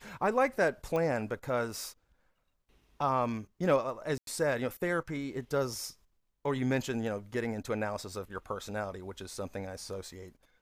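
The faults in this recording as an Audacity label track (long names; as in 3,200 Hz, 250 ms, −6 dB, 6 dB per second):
0.960000	0.960000	click −22 dBFS
4.180000	4.270000	drop-out 92 ms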